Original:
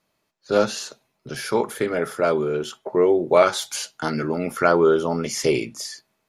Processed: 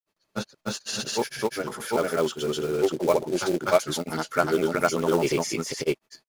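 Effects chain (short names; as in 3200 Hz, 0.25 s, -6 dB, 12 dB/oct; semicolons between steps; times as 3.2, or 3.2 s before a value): short-mantissa float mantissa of 2-bit; transient shaper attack -1 dB, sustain +5 dB; grains, spray 0.417 s, pitch spread up and down by 0 st; gain -2 dB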